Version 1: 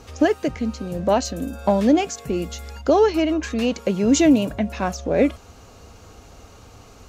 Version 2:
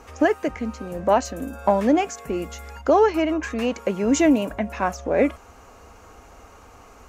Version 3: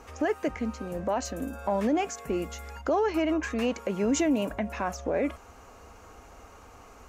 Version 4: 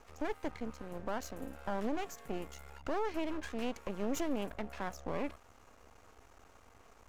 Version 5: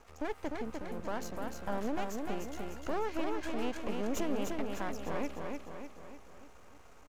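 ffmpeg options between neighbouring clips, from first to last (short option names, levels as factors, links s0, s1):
-af "equalizer=f=125:t=o:w=1:g=-10,equalizer=f=1000:t=o:w=1:g=5,equalizer=f=2000:t=o:w=1:g=4,equalizer=f=4000:t=o:w=1:g=-8,volume=0.841"
-af "alimiter=limit=0.178:level=0:latency=1:release=59,volume=0.708"
-af "aeval=exprs='max(val(0),0)':c=same,volume=0.473"
-af "aecho=1:1:300|600|900|1200|1500|1800|2100:0.631|0.328|0.171|0.0887|0.0461|0.024|0.0125"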